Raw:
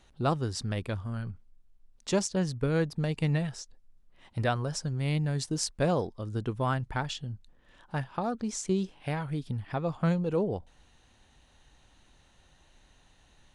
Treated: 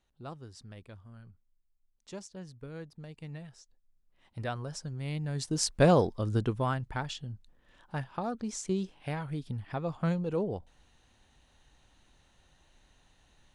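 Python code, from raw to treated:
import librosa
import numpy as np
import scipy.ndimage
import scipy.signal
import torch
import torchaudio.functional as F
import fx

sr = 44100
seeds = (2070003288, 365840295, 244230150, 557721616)

y = fx.gain(x, sr, db=fx.line((3.25, -16.0), (4.6, -6.5), (5.19, -6.5), (5.81, 5.0), (6.33, 5.0), (6.75, -3.0)))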